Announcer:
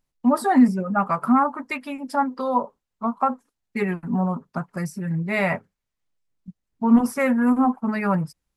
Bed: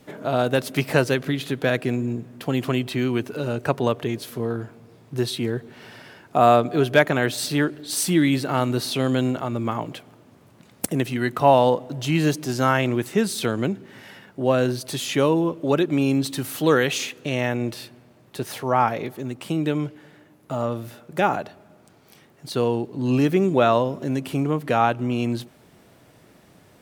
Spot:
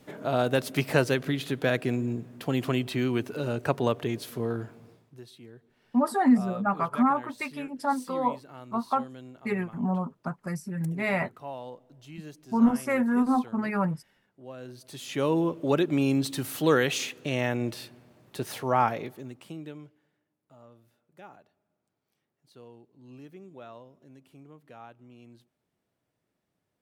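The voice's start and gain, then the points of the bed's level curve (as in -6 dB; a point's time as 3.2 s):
5.70 s, -5.0 dB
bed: 4.89 s -4 dB
5.21 s -23.5 dB
14.55 s -23.5 dB
15.38 s -4 dB
18.87 s -4 dB
20.25 s -28 dB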